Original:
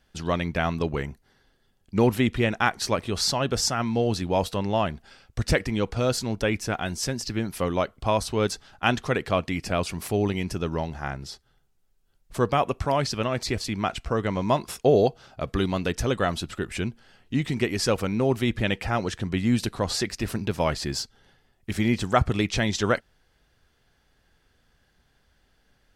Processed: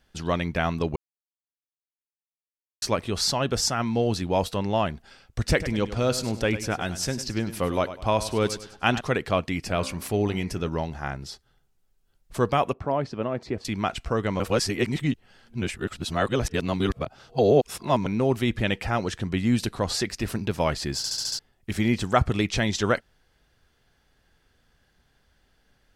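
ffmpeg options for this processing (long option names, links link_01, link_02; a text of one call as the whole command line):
ffmpeg -i in.wav -filter_complex "[0:a]asettb=1/sr,asplit=3[link_01][link_02][link_03];[link_01]atrim=end=5.504[link_04];[link_02]atrim=start=5.5:end=9.01,asetpts=PTS-STARTPTS,afade=type=in:duration=0.004:curve=qsin,afade=type=out:start_time=3.506:duration=0.004:curve=qsin,aecho=1:1:100|200|300|400:0.224|0.0828|0.0306|0.0113,atrim=end_sample=154791[link_05];[link_03]atrim=start=9.006[link_06];[link_04][link_05]acrossfade=duration=0.004:curve1=hsin:curve2=qsin[link_07];[link_07][link_06]acrossfade=duration=0.004:curve1=qsin:curve2=hsin,asettb=1/sr,asplit=3[link_08][link_09][link_10];[link_08]atrim=end=9.644[link_11];[link_09]atrim=start=9.64:end=10.69,asetpts=PTS-STARTPTS,afade=type=in:duration=0.004:curve=qsin,afade=type=out:start_time=1.046:duration=0.004:curve=qsin,bandreject=frequency=65.64:width_type=h:width=4,bandreject=frequency=131.28:width_type=h:width=4,bandreject=frequency=196.92:width_type=h:width=4,bandreject=frequency=262.56:width_type=h:width=4,bandreject=frequency=328.2:width_type=h:width=4,bandreject=frequency=393.84:width_type=h:width=4,bandreject=frequency=459.48:width_type=h:width=4,bandreject=frequency=525.12:width_type=h:width=4,bandreject=frequency=590.76:width_type=h:width=4,bandreject=frequency=656.4:width_type=h:width=4,bandreject=frequency=722.04:width_type=h:width=4,bandreject=frequency=787.68:width_type=h:width=4,bandreject=frequency=853.32:width_type=h:width=4,bandreject=frequency=918.96:width_type=h:width=4,bandreject=frequency=984.6:width_type=h:width=4,bandreject=frequency=1050.24:width_type=h:width=4,bandreject=frequency=1115.88:width_type=h:width=4,bandreject=frequency=1181.52:width_type=h:width=4,bandreject=frequency=1247.16:width_type=h:width=4,bandreject=frequency=1312.8:width_type=h:width=4,bandreject=frequency=1378.44:width_type=h:width=4,bandreject=frequency=1444.08:width_type=h:width=4,bandreject=frequency=1509.72:width_type=h:width=4,bandreject=frequency=1575.36:width_type=h:width=4,bandreject=frequency=1641:width_type=h:width=4,bandreject=frequency=1706.64:width_type=h:width=4,bandreject=frequency=1772.28:width_type=h:width=4,bandreject=frequency=1837.92:width_type=h:width=4,bandreject=frequency=1903.56:width_type=h:width=4,bandreject=frequency=1969.2:width_type=h:width=4,bandreject=frequency=2034.84:width_type=h:width=4,bandreject=frequency=2100.48:width_type=h:width=4,bandreject=frequency=2166.12:width_type=h:width=4,bandreject=frequency=2231.76:width_type=h:width=4,bandreject=frequency=2297.4:width_type=h:width=4,bandreject=frequency=2363.04:width_type=h:width=4,bandreject=frequency=2428.68:width_type=h:width=4[link_12];[link_10]atrim=start=10.686[link_13];[link_11][link_12]acrossfade=duration=0.004:curve1=hsin:curve2=qsin[link_14];[link_14][link_13]acrossfade=duration=0.004:curve1=qsin:curve2=hsin,asettb=1/sr,asplit=3[link_15][link_16][link_17];[link_15]atrim=end=12.734[link_18];[link_16]atrim=start=12.73:end=13.65,asetpts=PTS-STARTPTS,afade=type=in:duration=0.004:curve=qsin,afade=type=out:start_time=0.916:duration=0.004:curve=qsin,bandpass=frequency=370:width_type=q:width=0.5[link_19];[link_17]atrim=start=13.646[link_20];[link_18][link_19]acrossfade=duration=0.004:curve1=hsin:curve2=qsin[link_21];[link_21][link_20]acrossfade=duration=0.004:curve1=qsin:curve2=hsin,asplit=11[link_22][link_23][link_24][link_25][link_26][link_27][link_28][link_29][link_30][link_31][link_32];[link_22]atrim=end=0.96,asetpts=PTS-STARTPTS,afade=type=out:start_time=0.956:duration=0.004:curve=hsin[link_33];[link_23]atrim=start=0.96:end=2.82,asetpts=PTS-STARTPTS,volume=0[link_34];[link_24]atrim=start=2.82:end=14.402,asetpts=PTS-STARTPTS,afade=type=in:duration=0.004:curve=hsin[link_35];[link_25]atrim=start=14.398:end=18.062,asetpts=PTS-STARTPTS,areverse[link_36];[link_26]atrim=start=18.058:end=21.042[link_37];[link_27]atrim=start=20.968:end=21.042[link_38];[link_28]atrim=start=20.968:end=21.042[link_39];[link_29]atrim=start=20.968:end=21.042[link_40];[link_30]atrim=start=20.968:end=21.042[link_41];[link_31]atrim=start=20.968:end=21.042[link_42];[link_32]atrim=start=21.388[link_43];[link_33][link_34][link_35]concat=n=3:v=0:a=1[link_44];[link_44][link_36]acrossfade=duration=0.004:curve1=hsin:curve2=hsin[link_45];[link_45][link_37]acrossfade=duration=0.004:curve1=hsin:curve2=hsin[link_46];[link_46][link_38]acrossfade=duration=0.004:curve1=hsin:curve2=hsin[link_47];[link_47][link_39]acrossfade=duration=0.004:curve1=hsin:curve2=hsin[link_48];[link_48][link_40]acrossfade=duration=0.004:curve1=hsin:curve2=hsin[link_49];[link_49][link_41]acrossfade=duration=0.004:curve1=hsin:curve2=hsin[link_50];[link_50][link_42]acrossfade=duration=0.004:curve1=hsin:curve2=hsin[link_51];[link_51][link_43]acrossfade=duration=0.004:curve1=hsin:curve2=hsin" out.wav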